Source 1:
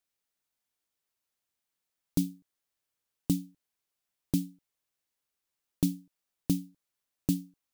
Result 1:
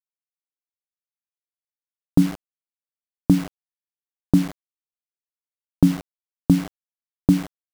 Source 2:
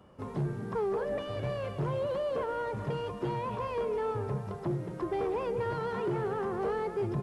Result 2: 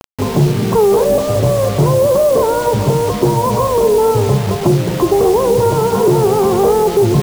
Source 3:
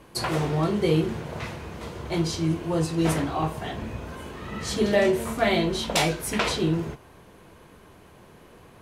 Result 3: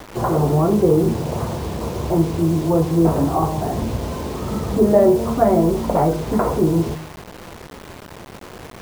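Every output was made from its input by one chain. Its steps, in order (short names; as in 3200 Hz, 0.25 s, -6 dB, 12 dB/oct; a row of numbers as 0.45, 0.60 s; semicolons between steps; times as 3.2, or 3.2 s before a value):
inverse Chebyshev low-pass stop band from 6000 Hz, stop band 80 dB; de-hum 158.1 Hz, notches 6; in parallel at +0.5 dB: compressor 5:1, threshold -34 dBFS; on the sum: wow and flutter 28 cents; bit-crush 7-bit; normalise peaks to -1.5 dBFS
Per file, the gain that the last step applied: +10.0, +16.5, +6.5 dB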